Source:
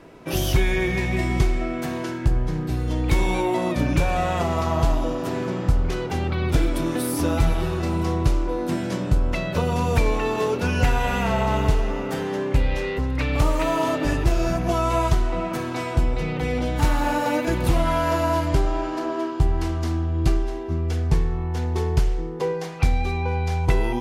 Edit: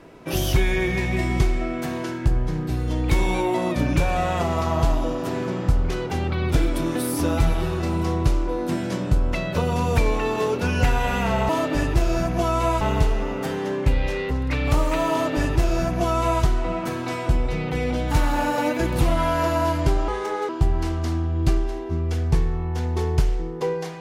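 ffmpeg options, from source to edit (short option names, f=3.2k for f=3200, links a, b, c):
-filter_complex "[0:a]asplit=5[a][b][c][d][e];[a]atrim=end=11.492[f];[b]atrim=start=13.788:end=15.112[g];[c]atrim=start=11.488:end=18.764[h];[d]atrim=start=18.76:end=19.28,asetpts=PTS-STARTPTS,asetrate=56007,aresample=44100[i];[e]atrim=start=19.276[j];[f][g]acrossfade=d=0.004:c1=hsin:c2=hsin[k];[k][h]acrossfade=d=0.004:c1=hsin:c2=hsin[l];[l][i]acrossfade=d=0.004:c1=hsin:c2=hsin[m];[m][j]acrossfade=d=0.004:c1=hsin:c2=hsin"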